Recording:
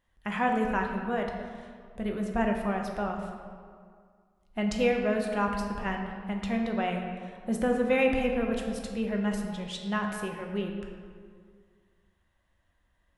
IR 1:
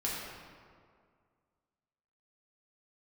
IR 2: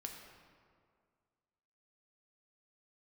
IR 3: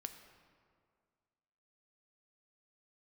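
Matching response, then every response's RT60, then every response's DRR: 2; 2.1 s, 2.1 s, 2.1 s; -6.0 dB, 1.5 dB, 7.0 dB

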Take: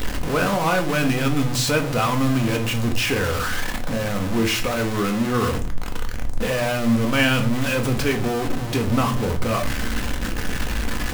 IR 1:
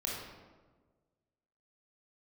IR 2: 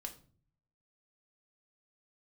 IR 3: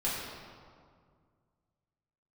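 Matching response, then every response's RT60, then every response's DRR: 2; 1.4 s, 0.45 s, 2.0 s; -4.0 dB, 3.5 dB, -9.0 dB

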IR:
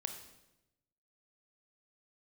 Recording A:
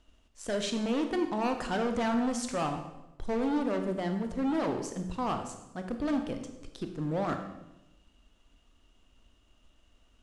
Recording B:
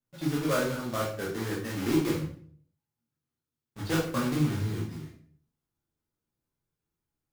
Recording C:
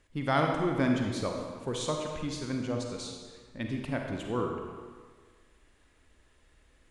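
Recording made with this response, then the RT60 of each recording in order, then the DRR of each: A; 0.95 s, 0.55 s, 1.6 s; 5.5 dB, -5.0 dB, 1.5 dB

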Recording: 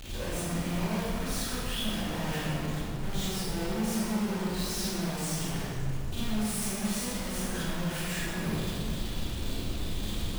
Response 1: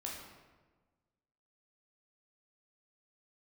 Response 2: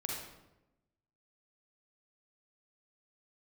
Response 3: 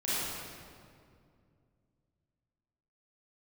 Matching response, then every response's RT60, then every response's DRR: 3; 1.3 s, 0.95 s, 2.3 s; -3.0 dB, -2.0 dB, -11.5 dB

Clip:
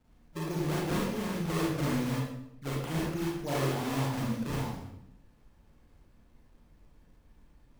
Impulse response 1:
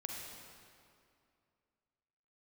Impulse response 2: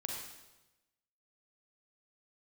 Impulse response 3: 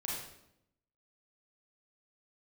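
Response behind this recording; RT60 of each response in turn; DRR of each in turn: 3; 2.4 s, 1.0 s, 0.80 s; -0.5 dB, -0.5 dB, -5.0 dB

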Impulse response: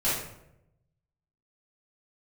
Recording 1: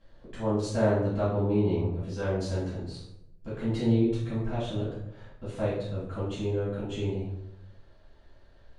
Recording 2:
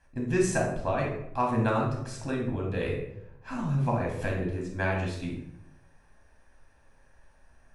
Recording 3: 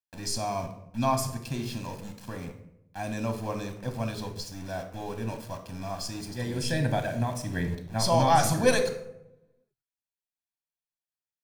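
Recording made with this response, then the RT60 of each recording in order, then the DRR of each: 1; 0.85 s, 0.85 s, 0.85 s; -11.5 dB, -2.0 dB, 5.5 dB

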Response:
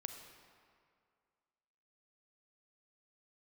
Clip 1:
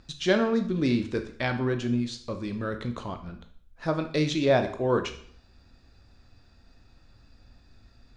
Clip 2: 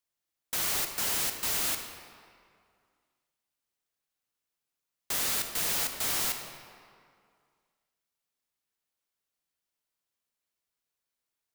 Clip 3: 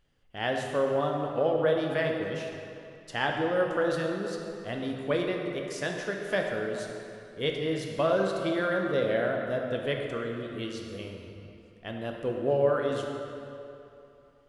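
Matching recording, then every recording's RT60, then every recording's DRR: 2; 0.60 s, 2.2 s, 2.9 s; 6.5 dB, 5.5 dB, 1.0 dB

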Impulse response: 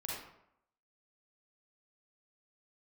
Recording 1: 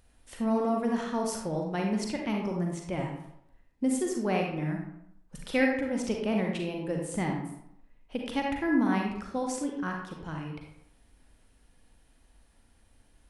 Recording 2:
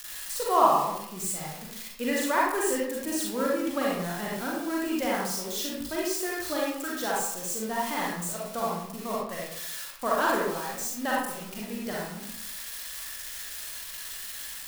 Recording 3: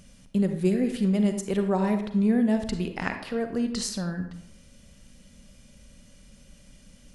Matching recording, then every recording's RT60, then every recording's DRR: 2; 0.75 s, 0.75 s, 0.75 s; 0.0 dB, -5.0 dB, 6.5 dB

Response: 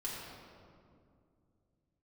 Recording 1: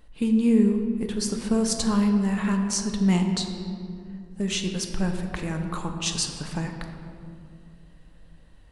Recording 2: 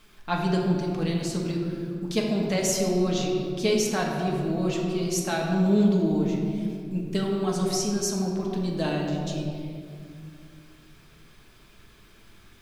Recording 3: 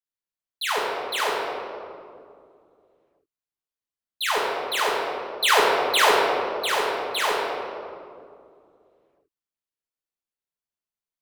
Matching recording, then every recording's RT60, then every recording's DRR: 3; 2.4 s, 2.4 s, 2.3 s; 3.5 dB, -1.5 dB, -6.5 dB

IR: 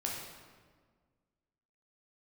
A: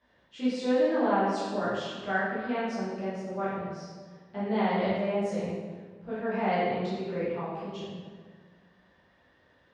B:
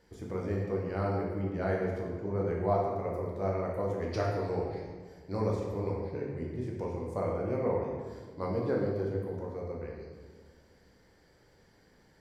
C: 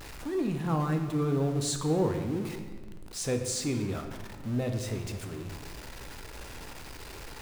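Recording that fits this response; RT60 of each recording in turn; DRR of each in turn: B; 1.6 s, 1.6 s, 1.6 s; -12.0 dB, -3.0 dB, 5.0 dB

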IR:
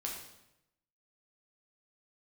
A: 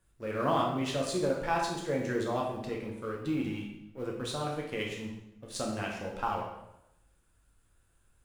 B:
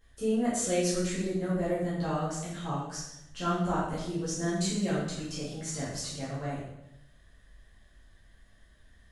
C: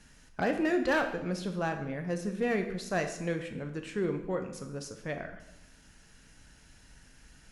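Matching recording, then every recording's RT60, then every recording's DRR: A; 0.85 s, 0.85 s, 0.85 s; -2.0 dB, -10.5 dB, 5.5 dB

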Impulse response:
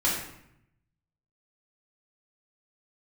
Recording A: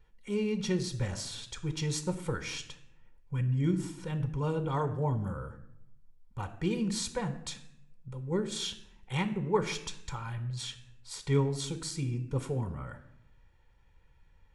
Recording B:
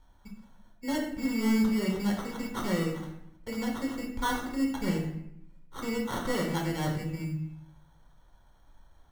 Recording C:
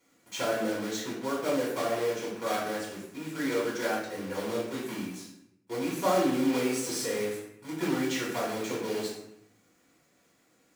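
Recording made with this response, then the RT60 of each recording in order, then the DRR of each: C; 0.75 s, 0.75 s, 0.75 s; 9.0 dB, 0.0 dB, -5.5 dB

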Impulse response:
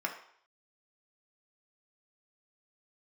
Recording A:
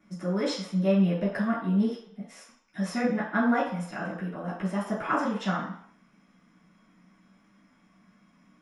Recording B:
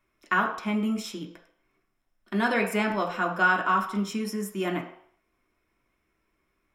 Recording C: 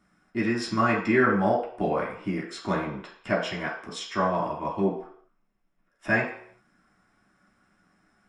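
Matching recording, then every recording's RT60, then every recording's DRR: B; 0.60 s, 0.60 s, 0.60 s; -15.5 dB, 0.5 dB, -7.0 dB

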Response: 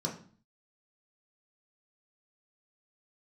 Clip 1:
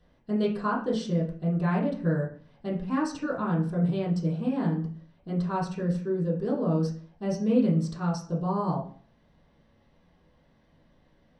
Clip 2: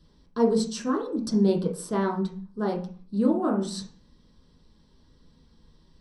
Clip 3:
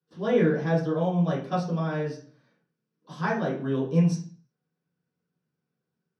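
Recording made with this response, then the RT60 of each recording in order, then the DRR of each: 2; 0.45 s, 0.45 s, 0.45 s; -6.0 dB, -2.0 dB, -10.0 dB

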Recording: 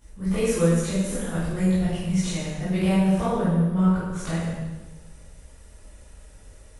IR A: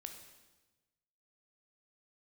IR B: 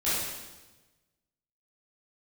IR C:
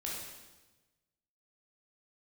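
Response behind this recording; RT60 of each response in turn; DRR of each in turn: B; 1.2 s, 1.2 s, 1.2 s; 4.5 dB, -12.5 dB, -5.0 dB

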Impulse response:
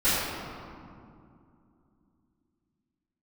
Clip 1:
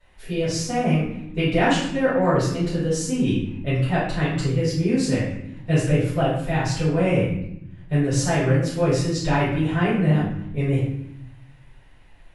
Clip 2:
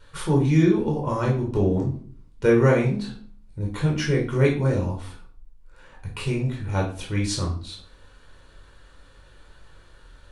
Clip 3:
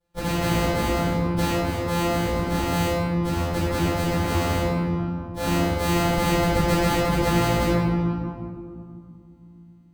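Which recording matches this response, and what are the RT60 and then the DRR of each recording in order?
3; 0.80 s, 0.45 s, 2.5 s; -13.5 dB, -2.0 dB, -18.5 dB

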